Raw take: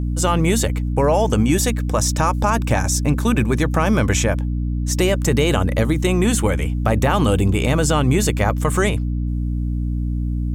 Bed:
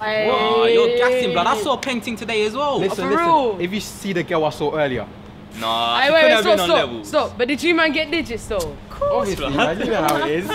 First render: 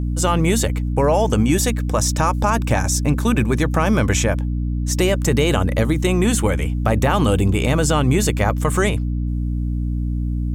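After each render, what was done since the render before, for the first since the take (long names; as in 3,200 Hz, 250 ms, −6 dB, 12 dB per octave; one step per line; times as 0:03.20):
no processing that can be heard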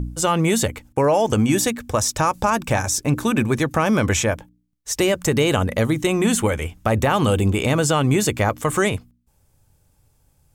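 hum removal 60 Hz, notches 5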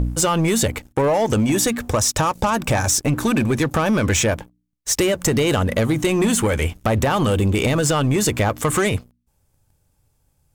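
downward compressor 6 to 1, threshold −20 dBFS, peak gain reduction 7.5 dB
leveller curve on the samples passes 2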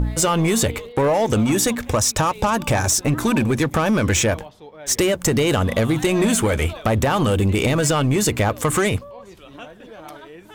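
mix in bed −20.5 dB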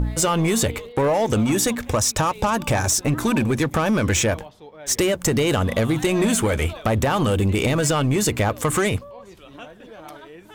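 level −1.5 dB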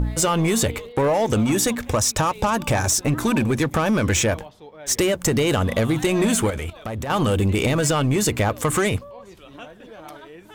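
0:06.50–0:07.10: output level in coarse steps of 14 dB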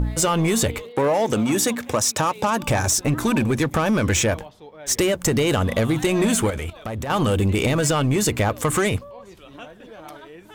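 0:00.83–0:02.63: high-pass filter 150 Hz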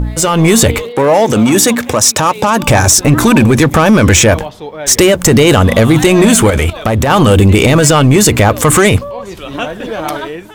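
automatic gain control gain up to 15 dB
boost into a limiter +6.5 dB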